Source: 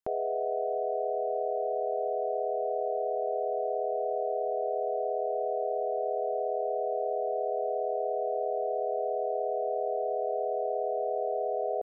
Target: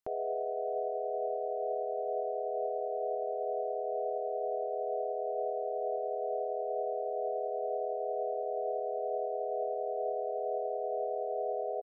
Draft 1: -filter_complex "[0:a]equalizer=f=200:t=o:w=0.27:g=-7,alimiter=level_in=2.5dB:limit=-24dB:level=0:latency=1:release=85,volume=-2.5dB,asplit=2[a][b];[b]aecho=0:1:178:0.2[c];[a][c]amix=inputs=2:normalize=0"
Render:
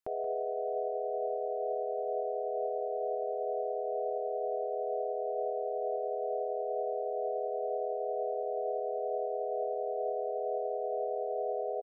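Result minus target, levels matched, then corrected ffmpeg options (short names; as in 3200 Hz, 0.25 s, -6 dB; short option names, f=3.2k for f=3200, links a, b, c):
echo-to-direct +12 dB
-filter_complex "[0:a]equalizer=f=200:t=o:w=0.27:g=-7,alimiter=level_in=2.5dB:limit=-24dB:level=0:latency=1:release=85,volume=-2.5dB,asplit=2[a][b];[b]aecho=0:1:178:0.0501[c];[a][c]amix=inputs=2:normalize=0"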